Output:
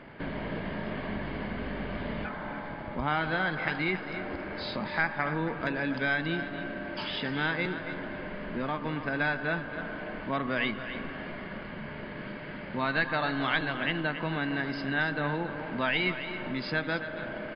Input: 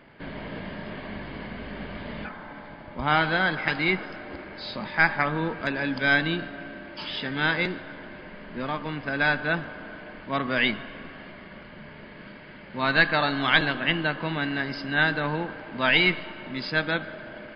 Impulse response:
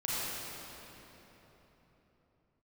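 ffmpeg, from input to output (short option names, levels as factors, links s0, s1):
-filter_complex "[0:a]highshelf=f=4500:g=-11,acompressor=threshold=0.0112:ratio=2,asplit=2[s0][s1];[s1]aecho=0:1:276:0.282[s2];[s0][s2]amix=inputs=2:normalize=0,volume=1.78"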